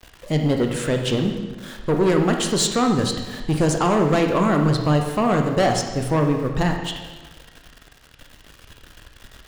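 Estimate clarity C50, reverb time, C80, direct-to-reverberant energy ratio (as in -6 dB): 5.0 dB, 1.3 s, 7.0 dB, 3.0 dB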